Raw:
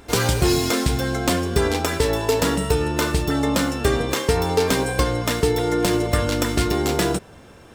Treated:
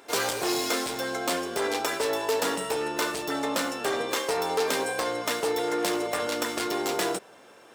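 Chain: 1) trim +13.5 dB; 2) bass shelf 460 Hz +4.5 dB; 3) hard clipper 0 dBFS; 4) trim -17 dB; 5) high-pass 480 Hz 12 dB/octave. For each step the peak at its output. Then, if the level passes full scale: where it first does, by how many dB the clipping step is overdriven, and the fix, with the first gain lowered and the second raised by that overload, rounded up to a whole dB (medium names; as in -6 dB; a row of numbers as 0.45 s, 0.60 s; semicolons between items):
+6.0 dBFS, +10.0 dBFS, 0.0 dBFS, -17.0 dBFS, -11.5 dBFS; step 1, 10.0 dB; step 1 +3.5 dB, step 4 -7 dB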